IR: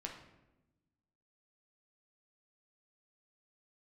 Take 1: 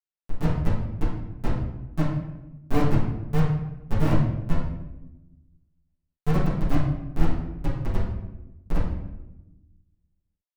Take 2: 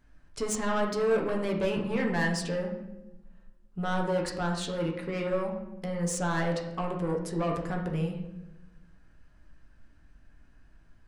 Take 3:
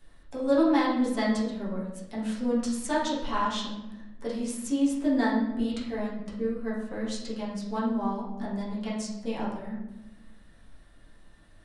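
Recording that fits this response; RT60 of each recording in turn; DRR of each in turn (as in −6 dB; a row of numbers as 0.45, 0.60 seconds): 2; 1.0, 1.0, 1.0 seconds; −14.0, 0.0, −8.0 decibels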